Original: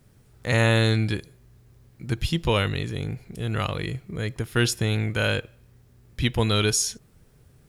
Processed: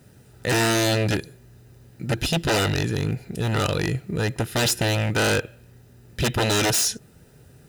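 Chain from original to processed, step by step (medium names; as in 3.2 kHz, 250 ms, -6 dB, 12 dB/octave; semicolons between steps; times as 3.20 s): wavefolder -22 dBFS; comb of notches 1.1 kHz; trim +8 dB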